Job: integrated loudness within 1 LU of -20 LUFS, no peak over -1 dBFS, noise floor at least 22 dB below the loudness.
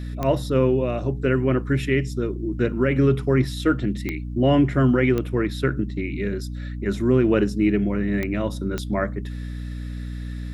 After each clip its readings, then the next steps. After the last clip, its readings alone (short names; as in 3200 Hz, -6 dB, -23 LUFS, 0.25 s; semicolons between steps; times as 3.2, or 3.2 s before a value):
clicks 5; hum 60 Hz; harmonics up to 300 Hz; hum level -28 dBFS; loudness -22.5 LUFS; peak -7.0 dBFS; loudness target -20.0 LUFS
-> de-click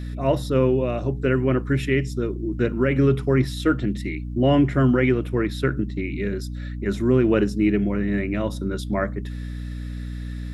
clicks 0; hum 60 Hz; harmonics up to 300 Hz; hum level -28 dBFS
-> notches 60/120/180/240/300 Hz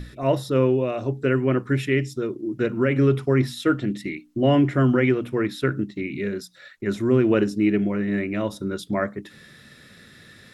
hum none; loudness -23.0 LUFS; peak -7.5 dBFS; loudness target -20.0 LUFS
-> gain +3 dB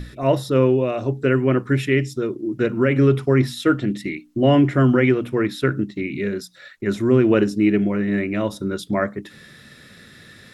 loudness -20.0 LUFS; peak -4.5 dBFS; noise floor -47 dBFS